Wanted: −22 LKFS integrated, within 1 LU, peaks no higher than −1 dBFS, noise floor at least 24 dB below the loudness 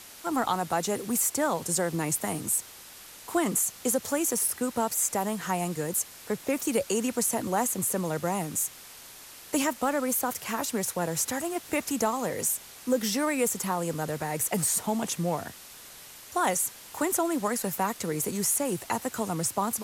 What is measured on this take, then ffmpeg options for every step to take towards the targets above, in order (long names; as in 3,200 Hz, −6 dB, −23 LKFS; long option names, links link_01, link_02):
background noise floor −48 dBFS; target noise floor −52 dBFS; integrated loudness −28.0 LKFS; sample peak −12.5 dBFS; target loudness −22.0 LKFS
→ -af "afftdn=noise_reduction=6:noise_floor=-48"
-af "volume=6dB"